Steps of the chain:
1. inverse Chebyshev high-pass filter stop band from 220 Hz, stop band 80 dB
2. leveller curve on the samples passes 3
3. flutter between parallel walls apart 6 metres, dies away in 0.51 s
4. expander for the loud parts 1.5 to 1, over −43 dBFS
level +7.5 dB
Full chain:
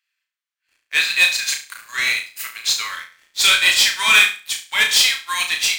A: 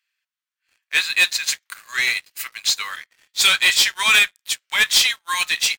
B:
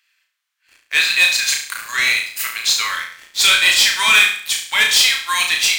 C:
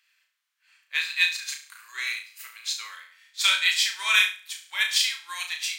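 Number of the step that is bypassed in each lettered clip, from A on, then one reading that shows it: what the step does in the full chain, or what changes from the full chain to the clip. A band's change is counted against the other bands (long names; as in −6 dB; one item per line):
3, change in crest factor −2.5 dB
4, change in momentary loudness spread −4 LU
2, change in crest factor +4.5 dB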